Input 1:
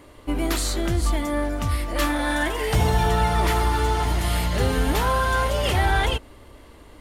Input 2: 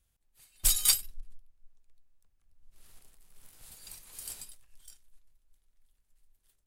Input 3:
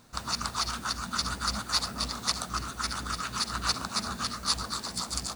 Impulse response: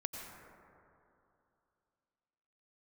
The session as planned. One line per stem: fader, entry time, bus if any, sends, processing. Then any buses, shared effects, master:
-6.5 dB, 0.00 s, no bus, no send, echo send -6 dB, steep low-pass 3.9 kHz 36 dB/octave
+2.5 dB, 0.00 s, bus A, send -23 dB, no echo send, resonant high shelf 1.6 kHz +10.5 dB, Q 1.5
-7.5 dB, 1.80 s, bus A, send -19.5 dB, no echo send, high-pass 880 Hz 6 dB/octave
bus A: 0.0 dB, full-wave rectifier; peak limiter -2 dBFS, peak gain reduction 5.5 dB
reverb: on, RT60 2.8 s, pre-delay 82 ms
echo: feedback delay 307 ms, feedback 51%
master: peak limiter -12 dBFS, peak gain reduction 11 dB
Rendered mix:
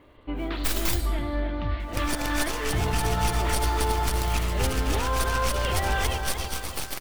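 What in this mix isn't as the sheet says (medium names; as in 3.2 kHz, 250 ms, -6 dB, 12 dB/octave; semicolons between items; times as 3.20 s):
stem 2 +2.5 dB -> -7.5 dB; stem 3 -7.5 dB -> +4.0 dB; reverb return +8.5 dB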